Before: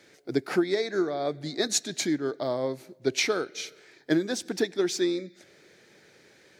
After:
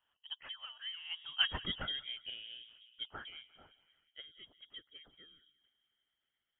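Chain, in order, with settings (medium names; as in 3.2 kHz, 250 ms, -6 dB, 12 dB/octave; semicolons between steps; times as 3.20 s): Doppler pass-by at 1.55 s, 43 m/s, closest 6.2 m; tape echo 177 ms, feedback 68%, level -14.5 dB, low-pass 1.8 kHz; harmonic-percussive split harmonic -11 dB; frequency inversion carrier 3.5 kHz; trim +2 dB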